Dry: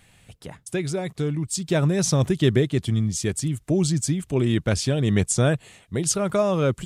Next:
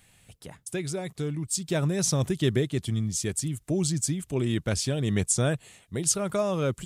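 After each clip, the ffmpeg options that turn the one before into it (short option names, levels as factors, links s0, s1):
-af "highshelf=f=6100:g=8,volume=0.531"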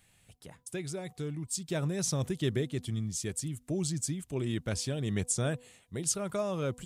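-af "bandreject=f=247.4:t=h:w=4,bandreject=f=494.8:t=h:w=4,bandreject=f=742.2:t=h:w=4,bandreject=f=989.6:t=h:w=4,volume=0.501"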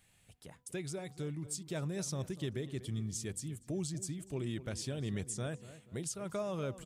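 -filter_complex "[0:a]alimiter=level_in=1.26:limit=0.0631:level=0:latency=1:release=269,volume=0.794,asplit=2[s0][s1];[s1]adelay=242,lowpass=f=2500:p=1,volume=0.188,asplit=2[s2][s3];[s3]adelay=242,lowpass=f=2500:p=1,volume=0.39,asplit=2[s4][s5];[s5]adelay=242,lowpass=f=2500:p=1,volume=0.39,asplit=2[s6][s7];[s7]adelay=242,lowpass=f=2500:p=1,volume=0.39[s8];[s0][s2][s4][s6][s8]amix=inputs=5:normalize=0,volume=0.708"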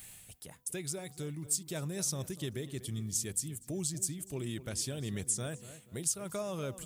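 -af "areverse,acompressor=mode=upward:threshold=0.00562:ratio=2.5,areverse,aemphasis=mode=production:type=50fm"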